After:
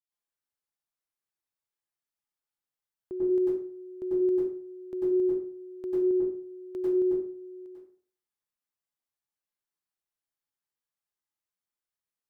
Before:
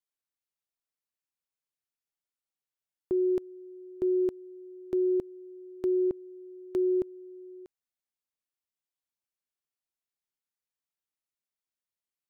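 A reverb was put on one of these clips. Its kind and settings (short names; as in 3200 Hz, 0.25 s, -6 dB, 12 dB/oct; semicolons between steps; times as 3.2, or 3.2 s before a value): plate-style reverb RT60 0.52 s, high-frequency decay 0.65×, pre-delay 85 ms, DRR -8.5 dB; gain -9 dB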